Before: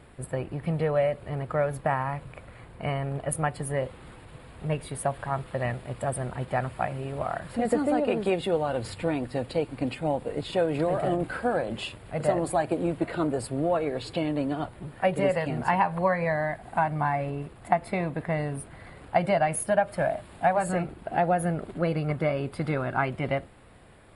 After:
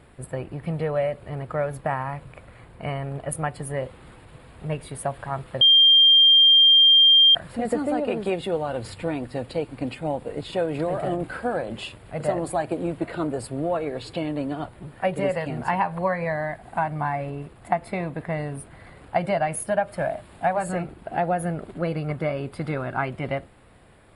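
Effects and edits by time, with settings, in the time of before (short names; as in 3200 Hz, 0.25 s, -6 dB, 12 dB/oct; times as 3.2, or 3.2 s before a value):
5.61–7.35 bleep 3190 Hz -11 dBFS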